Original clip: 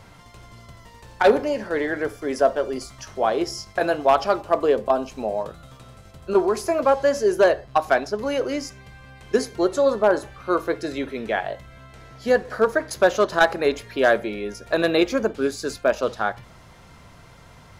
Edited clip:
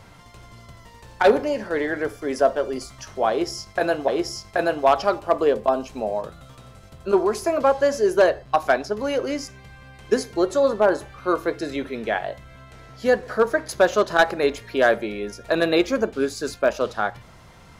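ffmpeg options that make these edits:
ffmpeg -i in.wav -filter_complex "[0:a]asplit=2[link_01][link_02];[link_01]atrim=end=4.082[link_03];[link_02]atrim=start=3.298[link_04];[link_03][link_04]acrossfade=duration=0.004:curve1=hsin:curve2=hsin" out.wav

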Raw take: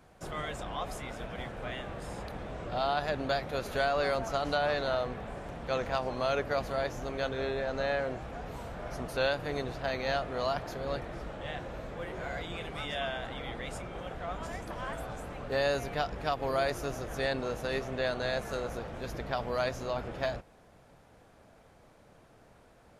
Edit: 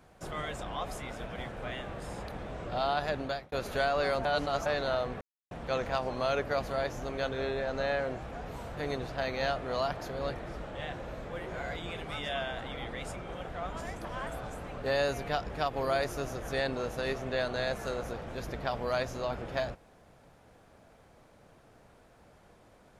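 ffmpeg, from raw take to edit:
ffmpeg -i in.wav -filter_complex "[0:a]asplit=7[link_01][link_02][link_03][link_04][link_05][link_06][link_07];[link_01]atrim=end=3.52,asetpts=PTS-STARTPTS,afade=type=out:start_time=3.04:duration=0.48:curve=qsin[link_08];[link_02]atrim=start=3.52:end=4.252,asetpts=PTS-STARTPTS,afade=type=in:duration=0.004:curve=hsin[link_09];[link_03]atrim=start=4.248:end=4.662,asetpts=PTS-STARTPTS,areverse[link_10];[link_04]atrim=start=4.658:end=5.21,asetpts=PTS-STARTPTS,afade=type=out:start_time=0.548:duration=0.004:curve=hsin[link_11];[link_05]atrim=start=5.21:end=5.51,asetpts=PTS-STARTPTS,volume=0[link_12];[link_06]atrim=start=5.51:end=8.772,asetpts=PTS-STARTPTS,afade=type=in:duration=0.004:curve=hsin[link_13];[link_07]atrim=start=9.428[link_14];[link_08][link_09]concat=n=2:v=0:a=1[link_15];[link_15][link_10]acrossfade=duration=0.004:curve1=hsin:curve2=hsin[link_16];[link_11][link_12][link_13]concat=n=3:v=0:a=1[link_17];[link_16][link_17]acrossfade=duration=0.004:curve1=hsin:curve2=hsin[link_18];[link_18][link_14]acrossfade=duration=0.004:curve1=hsin:curve2=hsin" out.wav

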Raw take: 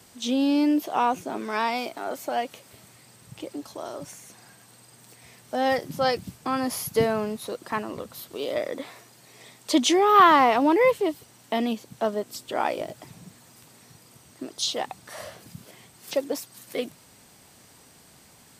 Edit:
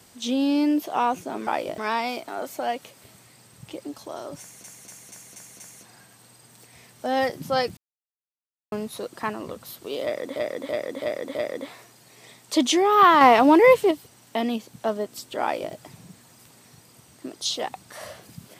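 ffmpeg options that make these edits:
ffmpeg -i in.wav -filter_complex "[0:a]asplit=16[link_01][link_02][link_03][link_04][link_05][link_06][link_07][link_08][link_09][link_10][link_11][link_12][link_13][link_14][link_15][link_16];[link_01]atrim=end=1.472[link_17];[link_02]atrim=start=12.588:end=12.902[link_18];[link_03]atrim=start=1.468:end=4.332[link_19];[link_04]atrim=start=4.088:end=4.332[link_20];[link_05]atrim=start=4.088:end=4.332[link_21];[link_06]atrim=start=4.088:end=4.332[link_22];[link_07]atrim=start=4.088:end=4.332[link_23];[link_08]atrim=start=4.088:end=6.26,asetpts=PTS-STARTPTS,afade=type=out:start_time=2.168:duration=0.004:curve=hsin[link_24];[link_09]atrim=start=6.26:end=7.21,asetpts=PTS-STARTPTS,volume=0[link_25];[link_10]atrim=start=7.21:end=8.852,asetpts=PTS-STARTPTS,afade=type=in:duration=0.004:curve=hsin[link_26];[link_11]atrim=start=8.518:end=8.852[link_27];[link_12]atrim=start=8.518:end=8.852[link_28];[link_13]atrim=start=8.518:end=8.852[link_29];[link_14]atrim=start=8.518:end=10.382[link_30];[link_15]atrim=start=10.378:end=11.082,asetpts=PTS-STARTPTS,volume=5dB[link_31];[link_16]atrim=start=11.078[link_32];[link_17][link_18]acrossfade=duration=0.004:curve1=hsin:curve2=hsin[link_33];[link_33][link_19]acrossfade=duration=0.004:curve1=hsin:curve2=hsin[link_34];[link_34][link_20]acrossfade=duration=0.004:curve1=hsin:curve2=hsin[link_35];[link_35][link_21]acrossfade=duration=0.004:curve1=hsin:curve2=hsin[link_36];[link_36][link_22]acrossfade=duration=0.004:curve1=hsin:curve2=hsin[link_37];[link_37][link_23]acrossfade=duration=0.004:curve1=hsin:curve2=hsin[link_38];[link_24][link_25][link_26]concat=n=3:v=0:a=1[link_39];[link_38][link_39]acrossfade=duration=0.004:curve1=hsin:curve2=hsin[link_40];[link_40][link_27]acrossfade=duration=0.004:curve1=hsin:curve2=hsin[link_41];[link_41][link_28]acrossfade=duration=0.004:curve1=hsin:curve2=hsin[link_42];[link_42][link_29]acrossfade=duration=0.004:curve1=hsin:curve2=hsin[link_43];[link_43][link_30]acrossfade=duration=0.004:curve1=hsin:curve2=hsin[link_44];[link_44][link_31]acrossfade=duration=0.004:curve1=hsin:curve2=hsin[link_45];[link_45][link_32]acrossfade=duration=0.004:curve1=hsin:curve2=hsin" out.wav

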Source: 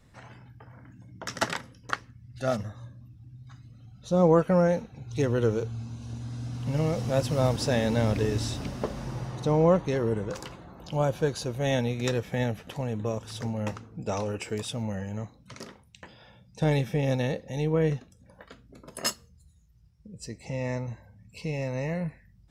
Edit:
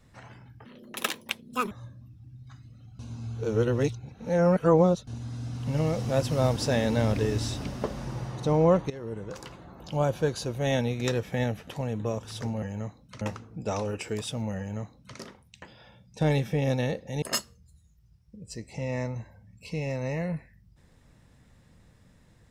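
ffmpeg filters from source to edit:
ffmpeg -i in.wav -filter_complex "[0:a]asplit=9[link_01][link_02][link_03][link_04][link_05][link_06][link_07][link_08][link_09];[link_01]atrim=end=0.654[link_10];[link_02]atrim=start=0.65:end=2.71,asetpts=PTS-STARTPTS,asetrate=85554,aresample=44100[link_11];[link_03]atrim=start=2.706:end=3.992[link_12];[link_04]atrim=start=3.988:end=6.072,asetpts=PTS-STARTPTS,areverse[link_13];[link_05]atrim=start=6.068:end=9.9,asetpts=PTS-STARTPTS,afade=type=out:start_time=3.828:duration=0.004:curve=hsin:silence=0.158489[link_14];[link_06]atrim=start=9.9:end=13.622,asetpts=PTS-STARTPTS,afade=type=in:duration=0.81:silence=0.158489[link_15];[link_07]atrim=start=14.988:end=15.582[link_16];[link_08]atrim=start=13.618:end=17.632[link_17];[link_09]atrim=start=18.938[link_18];[link_10][link_11]acrossfade=duration=0.004:curve1=hsin:curve2=hsin[link_19];[link_19][link_12]acrossfade=duration=0.004:curve1=hsin:curve2=hsin[link_20];[link_20][link_13]acrossfade=duration=0.004:curve1=hsin:curve2=hsin[link_21];[link_14][link_15]concat=n=2:v=0:a=1[link_22];[link_21][link_22]acrossfade=duration=0.004:curve1=hsin:curve2=hsin[link_23];[link_23][link_16]acrossfade=duration=0.004:curve1=hsin:curve2=hsin[link_24];[link_24][link_17]acrossfade=duration=0.004:curve1=hsin:curve2=hsin[link_25];[link_25][link_18]acrossfade=duration=0.004:curve1=hsin:curve2=hsin" out.wav

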